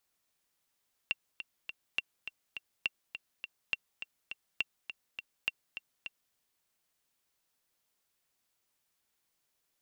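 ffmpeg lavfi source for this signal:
-f lavfi -i "aevalsrc='pow(10,(-16.5-10*gte(mod(t,3*60/206),60/206))/20)*sin(2*PI*2740*mod(t,60/206))*exp(-6.91*mod(t,60/206)/0.03)':d=5.24:s=44100"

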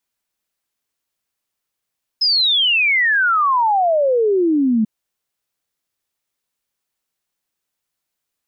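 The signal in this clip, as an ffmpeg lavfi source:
-f lavfi -i "aevalsrc='0.237*clip(min(t,2.64-t)/0.01,0,1)*sin(2*PI*5200*2.64/log(210/5200)*(exp(log(210/5200)*t/2.64)-1))':d=2.64:s=44100"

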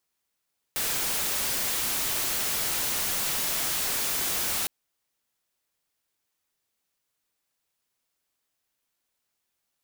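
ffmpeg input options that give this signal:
-f lavfi -i "anoisesrc=c=white:a=0.0689:d=3.91:r=44100:seed=1"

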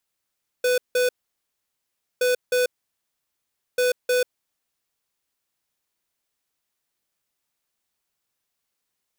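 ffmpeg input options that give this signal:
-f lavfi -i "aevalsrc='0.1*(2*lt(mod(498*t,1),0.5)-1)*clip(min(mod(mod(t,1.57),0.31),0.14-mod(mod(t,1.57),0.31))/0.005,0,1)*lt(mod(t,1.57),0.62)':d=4.71:s=44100"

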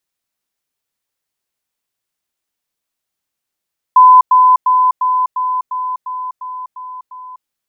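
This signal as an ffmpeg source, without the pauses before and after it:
-f lavfi -i "aevalsrc='pow(10,(-2-3*floor(t/0.35))/20)*sin(2*PI*1010*t)*clip(min(mod(t,0.35),0.25-mod(t,0.35))/0.005,0,1)':d=3.5:s=44100"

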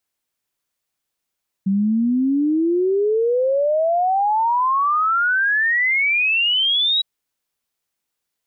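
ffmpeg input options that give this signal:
-f lavfi -i "aevalsrc='0.178*clip(min(t,5.36-t)/0.01,0,1)*sin(2*PI*190*5.36/log(3900/190)*(exp(log(3900/190)*t/5.36)-1))':d=5.36:s=44100"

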